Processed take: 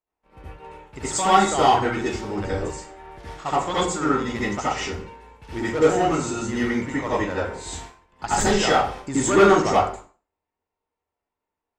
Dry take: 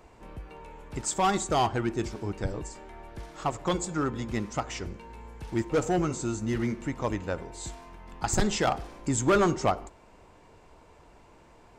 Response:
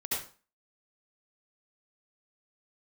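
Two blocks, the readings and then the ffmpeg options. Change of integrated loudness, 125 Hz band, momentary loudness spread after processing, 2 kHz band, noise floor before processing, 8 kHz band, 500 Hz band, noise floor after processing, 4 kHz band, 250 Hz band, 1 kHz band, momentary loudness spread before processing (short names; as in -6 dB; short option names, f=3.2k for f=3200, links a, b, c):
+7.5 dB, +1.5 dB, 19 LU, +9.5 dB, -56 dBFS, +5.5 dB, +8.0 dB, under -85 dBFS, +8.5 dB, +5.5 dB, +9.5 dB, 19 LU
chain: -filter_complex "[0:a]asplit=2[a][b];[b]highpass=f=720:p=1,volume=5dB,asoftclip=type=tanh:threshold=-15dB[c];[a][c]amix=inputs=2:normalize=0,lowpass=f=4.6k:p=1,volume=-6dB,agate=range=-38dB:threshold=-45dB:ratio=16:detection=peak[d];[1:a]atrim=start_sample=2205[e];[d][e]afir=irnorm=-1:irlink=0,volume=4dB"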